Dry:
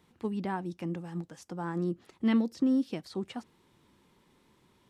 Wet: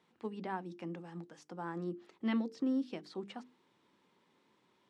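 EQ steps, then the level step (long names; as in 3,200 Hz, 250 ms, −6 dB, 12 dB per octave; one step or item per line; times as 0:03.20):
Bessel high-pass filter 250 Hz, order 2
high-frequency loss of the air 72 metres
mains-hum notches 50/100/150/200/250/300/350/400/450 Hz
−3.5 dB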